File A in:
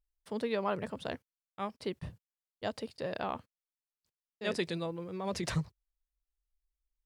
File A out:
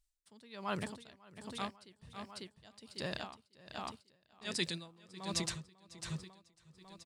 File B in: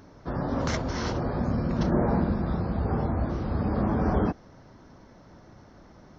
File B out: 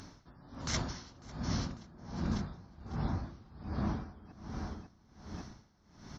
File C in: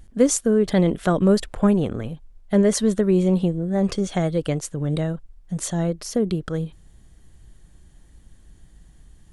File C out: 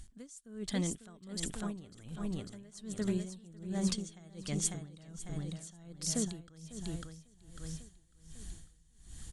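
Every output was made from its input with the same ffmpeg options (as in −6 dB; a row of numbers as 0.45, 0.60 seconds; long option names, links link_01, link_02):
-af "equalizer=frequency=500:width_type=o:width=1:gain=-9,equalizer=frequency=4000:width_type=o:width=1:gain=5,equalizer=frequency=8000:width_type=o:width=1:gain=11,areverse,acompressor=threshold=-33dB:ratio=6,areverse,aecho=1:1:548|1096|1644|2192|2740|3288:0.501|0.246|0.12|0.059|0.0289|0.0142,aeval=exprs='val(0)*pow(10,-23*(0.5-0.5*cos(2*PI*1.3*n/s))/20)':channel_layout=same,volume=2.5dB"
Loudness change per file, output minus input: −5.0, −12.0, −17.0 LU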